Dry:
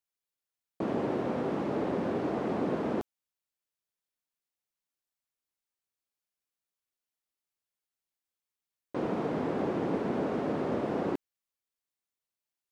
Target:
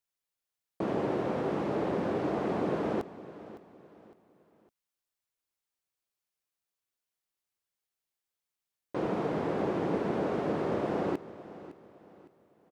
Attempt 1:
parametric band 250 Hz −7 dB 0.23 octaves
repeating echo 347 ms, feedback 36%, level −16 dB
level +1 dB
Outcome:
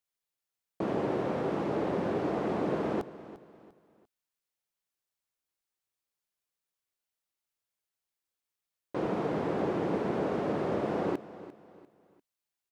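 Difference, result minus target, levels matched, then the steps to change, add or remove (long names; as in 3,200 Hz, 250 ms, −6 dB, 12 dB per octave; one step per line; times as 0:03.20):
echo 212 ms early
change: repeating echo 559 ms, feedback 36%, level −16 dB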